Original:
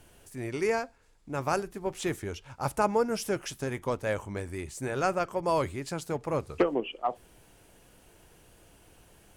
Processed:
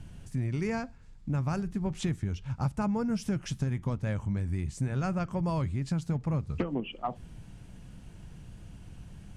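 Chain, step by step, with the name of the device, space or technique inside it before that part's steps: jukebox (LPF 7700 Hz 12 dB/oct; resonant low shelf 270 Hz +13.5 dB, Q 1.5; compressor 4:1, threshold -28 dBFS, peak gain reduction 12 dB)

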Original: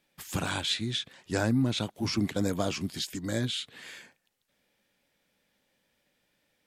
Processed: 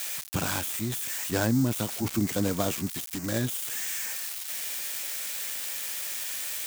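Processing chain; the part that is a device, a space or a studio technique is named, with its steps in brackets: budget class-D amplifier (switching dead time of 0.13 ms; switching spikes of -20 dBFS); gain +1.5 dB

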